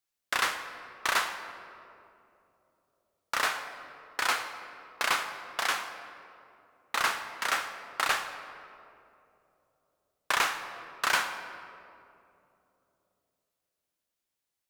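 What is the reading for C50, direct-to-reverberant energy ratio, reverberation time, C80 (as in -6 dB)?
9.0 dB, 8.0 dB, 2.9 s, 10.0 dB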